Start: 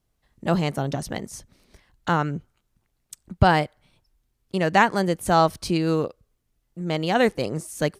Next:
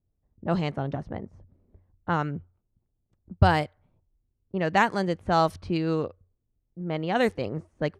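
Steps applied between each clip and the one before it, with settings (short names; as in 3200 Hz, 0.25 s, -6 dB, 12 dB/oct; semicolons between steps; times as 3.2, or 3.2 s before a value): low-pass opened by the level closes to 490 Hz, open at -14 dBFS; bell 90 Hz +12.5 dB 0.24 oct; gain -4 dB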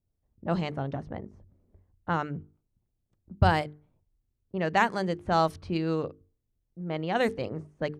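notches 50/100/150/200/250/300/350/400/450 Hz; gain -2 dB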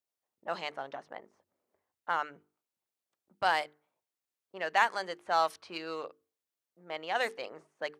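in parallel at -7 dB: hard clip -23.5 dBFS, distortion -7 dB; on the sum: HPF 790 Hz 12 dB/oct; gain -2 dB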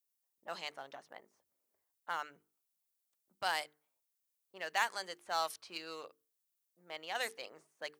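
pre-emphasis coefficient 0.8; gain +4.5 dB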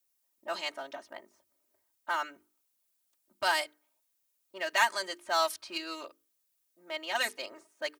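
comb 3.2 ms, depth 98%; gain +4.5 dB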